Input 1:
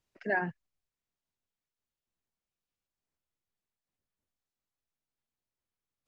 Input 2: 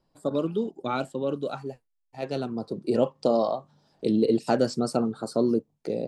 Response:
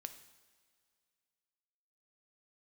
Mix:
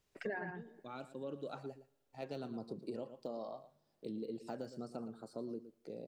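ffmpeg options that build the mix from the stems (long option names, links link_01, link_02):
-filter_complex "[0:a]equalizer=frequency=430:width=5.5:gain=7,volume=2.5dB,asplit=3[link_01][link_02][link_03];[link_02]volume=-11.5dB[link_04];[link_03]volume=-6.5dB[link_05];[1:a]deesser=1,volume=-12dB,afade=type=in:start_time=0.92:duration=0.7:silence=0.334965,afade=type=out:start_time=2.8:duration=0.25:silence=0.421697,asplit=3[link_06][link_07][link_08];[link_07]volume=-8.5dB[link_09];[link_08]volume=-12.5dB[link_10];[2:a]atrim=start_sample=2205[link_11];[link_04][link_09]amix=inputs=2:normalize=0[link_12];[link_12][link_11]afir=irnorm=-1:irlink=0[link_13];[link_05][link_10]amix=inputs=2:normalize=0,aecho=0:1:114:1[link_14];[link_01][link_06][link_13][link_14]amix=inputs=4:normalize=0,acompressor=threshold=-38dB:ratio=10"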